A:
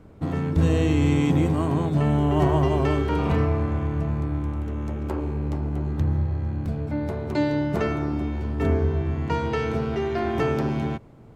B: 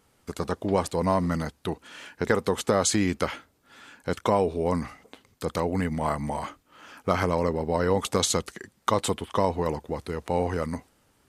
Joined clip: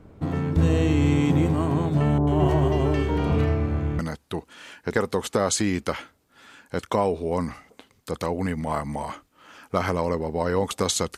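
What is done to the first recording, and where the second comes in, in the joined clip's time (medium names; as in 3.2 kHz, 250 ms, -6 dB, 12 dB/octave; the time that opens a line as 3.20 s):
A
2.18–3.99 s: bands offset in time lows, highs 90 ms, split 1.2 kHz
3.99 s: go over to B from 1.33 s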